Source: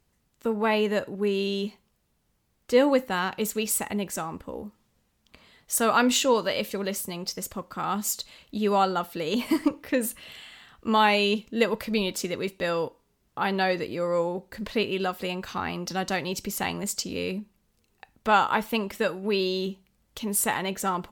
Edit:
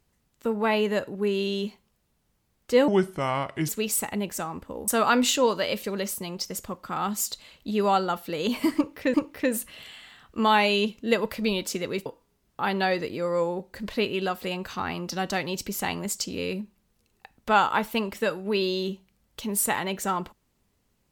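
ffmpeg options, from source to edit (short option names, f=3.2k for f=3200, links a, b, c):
-filter_complex "[0:a]asplit=6[a][b][c][d][e][f];[a]atrim=end=2.884[g];[b]atrim=start=2.88:end=3.47,asetpts=PTS-STARTPTS,asetrate=32193,aresample=44100,atrim=end_sample=35642,asetpts=PTS-STARTPTS[h];[c]atrim=start=3.466:end=4.662[i];[d]atrim=start=5.748:end=10.012[j];[e]atrim=start=9.628:end=12.552[k];[f]atrim=start=12.838[l];[g][h]acrossfade=d=0.004:c1=hsin:c2=hsin[m];[m][i]acrossfade=d=0.004:c1=hsin:c2=hsin[n];[n][j]acrossfade=d=0.004:c1=hsin:c2=hsin[o];[o][k]acrossfade=d=0.004:c1=hsin:c2=hsin[p];[p][l]acrossfade=d=0.004:c1=hsin:c2=hsin"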